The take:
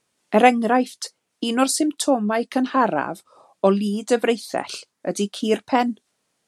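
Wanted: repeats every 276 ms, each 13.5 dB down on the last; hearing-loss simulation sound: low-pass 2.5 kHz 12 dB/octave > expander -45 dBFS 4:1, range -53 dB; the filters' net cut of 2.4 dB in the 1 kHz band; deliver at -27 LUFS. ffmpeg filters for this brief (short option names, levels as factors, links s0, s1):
-af "lowpass=2500,equalizer=f=1000:t=o:g=-3.5,aecho=1:1:276|552:0.211|0.0444,agate=range=0.00224:threshold=0.00562:ratio=4,volume=0.596"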